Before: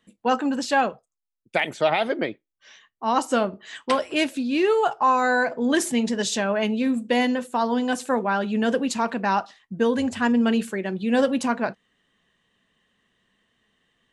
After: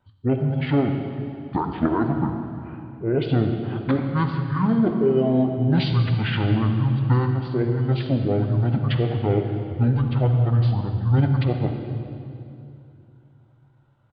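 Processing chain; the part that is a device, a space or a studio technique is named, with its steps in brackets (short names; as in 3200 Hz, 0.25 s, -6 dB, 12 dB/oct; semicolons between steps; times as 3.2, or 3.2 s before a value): monster voice (pitch shift -11.5 st; formant shift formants -3.5 st; low shelf 180 Hz +4 dB; reverb RT60 2.6 s, pre-delay 44 ms, DRR 5 dB); gain -1 dB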